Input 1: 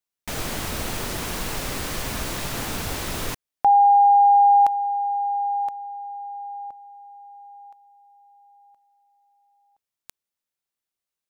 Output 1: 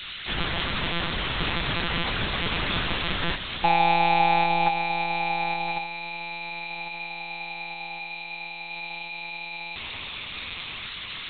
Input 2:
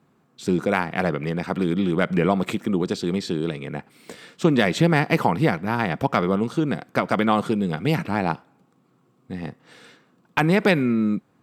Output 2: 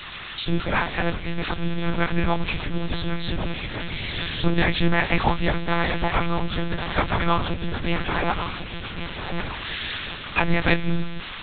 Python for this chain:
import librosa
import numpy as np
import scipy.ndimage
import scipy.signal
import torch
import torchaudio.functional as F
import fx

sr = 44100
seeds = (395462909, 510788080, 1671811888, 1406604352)

p1 = x + 0.5 * 10.0 ** (-13.5 / 20.0) * np.diff(np.sign(x), prepend=np.sign(x[:1]))
p2 = fx.peak_eq(p1, sr, hz=420.0, db=-7.5, octaves=1.5)
p3 = fx.doubler(p2, sr, ms=17.0, db=-2.0)
p4 = p3 + fx.echo_feedback(p3, sr, ms=1098, feedback_pct=45, wet_db=-9, dry=0)
y = fx.lpc_monotone(p4, sr, seeds[0], pitch_hz=170.0, order=8)